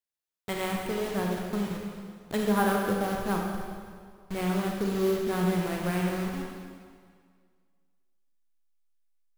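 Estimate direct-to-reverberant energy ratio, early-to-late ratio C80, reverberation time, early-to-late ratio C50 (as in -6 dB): 0.0 dB, 2.5 dB, 2.0 s, 1.0 dB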